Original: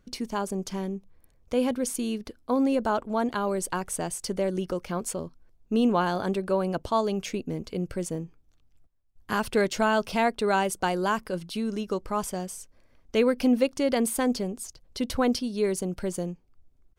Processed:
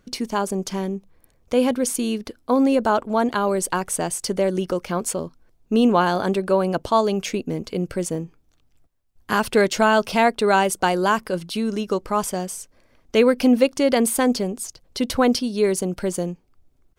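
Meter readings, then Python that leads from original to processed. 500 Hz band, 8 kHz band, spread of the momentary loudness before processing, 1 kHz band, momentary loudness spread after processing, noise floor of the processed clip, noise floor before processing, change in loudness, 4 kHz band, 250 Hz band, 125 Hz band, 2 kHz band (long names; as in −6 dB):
+6.5 dB, +7.0 dB, 10 LU, +7.0 dB, 10 LU, −62 dBFS, −63 dBFS, +6.5 dB, +7.0 dB, +5.5 dB, +5.0 dB, +7.0 dB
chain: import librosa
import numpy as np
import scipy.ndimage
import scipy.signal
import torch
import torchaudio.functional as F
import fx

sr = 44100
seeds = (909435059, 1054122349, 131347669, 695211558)

y = fx.low_shelf(x, sr, hz=110.0, db=-7.5)
y = F.gain(torch.from_numpy(y), 7.0).numpy()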